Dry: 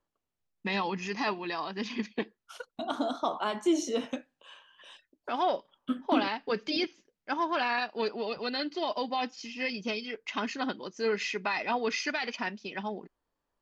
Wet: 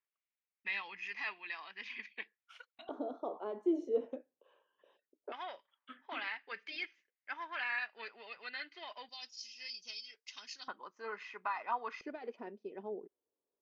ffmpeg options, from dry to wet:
-af "asetnsamples=n=441:p=0,asendcmd='2.89 bandpass f 440;5.32 bandpass f 2000;9.09 bandpass f 5200;10.68 bandpass f 1100;12.01 bandpass f 420',bandpass=f=2.2k:t=q:w=3.2:csg=0"

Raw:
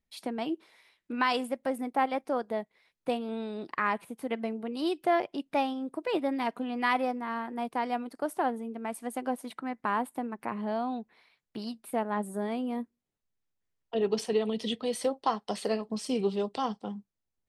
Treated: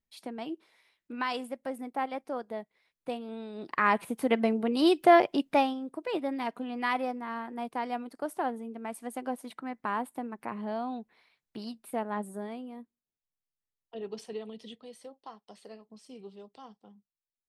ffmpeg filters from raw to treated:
-af "volume=7dB,afade=t=in:st=3.53:d=0.55:silence=0.251189,afade=t=out:st=5.37:d=0.44:silence=0.334965,afade=t=out:st=12.16:d=0.56:silence=0.375837,afade=t=out:st=14.37:d=0.63:silence=0.446684"

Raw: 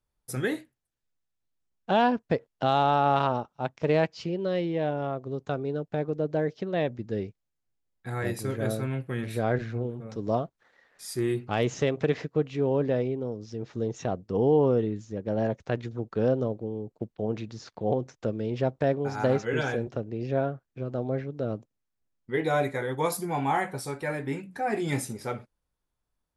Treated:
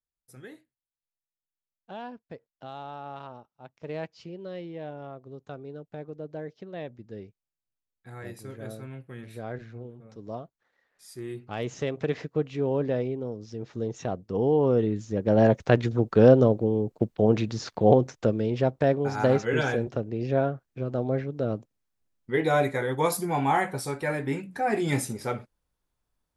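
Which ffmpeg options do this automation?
-af "volume=9dB,afade=t=in:st=3.63:d=0.44:silence=0.446684,afade=t=in:st=11.24:d=1.13:silence=0.354813,afade=t=in:st=14.6:d=0.97:silence=0.316228,afade=t=out:st=17.86:d=0.7:silence=0.473151"

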